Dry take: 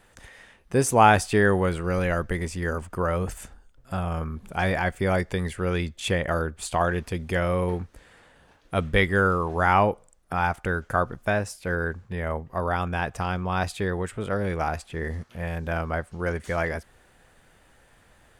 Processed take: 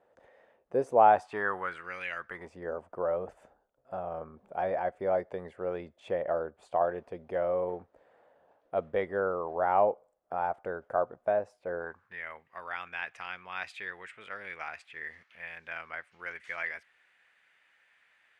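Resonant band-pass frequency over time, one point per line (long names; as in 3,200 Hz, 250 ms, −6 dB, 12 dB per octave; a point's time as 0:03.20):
resonant band-pass, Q 2.5
0:00.95 570 Hz
0:02.11 2,600 Hz
0:02.52 620 Hz
0:11.77 620 Hz
0:12.21 2,200 Hz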